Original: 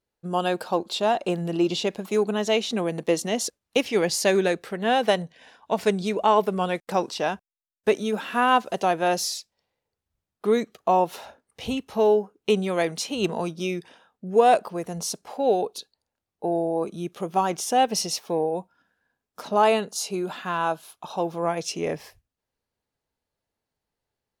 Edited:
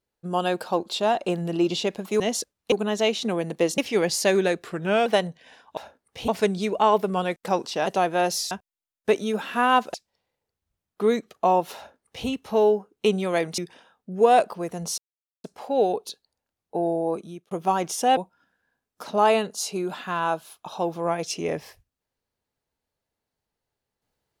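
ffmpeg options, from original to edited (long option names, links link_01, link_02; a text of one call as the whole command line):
ffmpeg -i in.wav -filter_complex "[0:a]asplit=15[link_01][link_02][link_03][link_04][link_05][link_06][link_07][link_08][link_09][link_10][link_11][link_12][link_13][link_14][link_15];[link_01]atrim=end=2.202[link_16];[link_02]atrim=start=3.258:end=3.782[link_17];[link_03]atrim=start=2.198:end=3.262[link_18];[link_04]atrim=start=3.778:end=4.644[link_19];[link_05]atrim=start=4.64:end=5.01,asetpts=PTS-STARTPTS,asetrate=38808,aresample=44100,atrim=end_sample=18542,asetpts=PTS-STARTPTS[link_20];[link_06]atrim=start=5.006:end=5.722[link_21];[link_07]atrim=start=11.198:end=11.712[link_22];[link_08]atrim=start=5.718:end=7.302[link_23];[link_09]atrim=start=8.728:end=9.382[link_24];[link_10]atrim=start=7.298:end=8.732[link_25];[link_11]atrim=start=9.378:end=13.022[link_26];[link_12]atrim=start=13.728:end=15.13,asetpts=PTS-STARTPTS,afade=type=out:start_time=1.398:duration=0.004:curve=hsin,apad=pad_dur=0.46[link_27];[link_13]atrim=start=15.13:end=17.2,asetpts=PTS-STARTPTS,afade=type=in:duration=0.004:curve=hsin,afade=type=out:start_time=1.66:duration=0.41[link_28];[link_14]atrim=start=17.2:end=17.862,asetpts=PTS-STARTPTS,afade=type=in:duration=0.004:curve=hsin[link_29];[link_15]atrim=start=18.548[link_30];[link_16][link_17]acrossfade=duration=0.004:curve1=hsin:curve2=hsin[link_31];[link_31][link_18]acrossfade=duration=0.004:curve1=hsin:curve2=hsin[link_32];[link_32][link_19]acrossfade=duration=0.004:curve1=hsin:curve2=hsin[link_33];[link_33][link_20]acrossfade=duration=0.004:curve1=hsin:curve2=hsin[link_34];[link_34][link_21]acrossfade=duration=0.004:curve1=hsin:curve2=hsin[link_35];[link_35][link_22]acrossfade=duration=0.004:curve1=hsin:curve2=hsin[link_36];[link_36][link_23]acrossfade=duration=0.004:curve1=hsin:curve2=hsin[link_37];[link_37][link_24]acrossfade=duration=0.004:curve1=hsin:curve2=hsin[link_38];[link_38][link_25]acrossfade=duration=0.004:curve1=hsin:curve2=hsin[link_39];[link_39][link_26]acrossfade=duration=0.004:curve1=hsin:curve2=hsin[link_40];[link_27][link_28][link_29]concat=n=3:v=0:a=1[link_41];[link_40][link_41]acrossfade=duration=0.004:curve1=hsin:curve2=hsin[link_42];[link_42][link_30]acrossfade=duration=0.004:curve1=hsin:curve2=hsin" out.wav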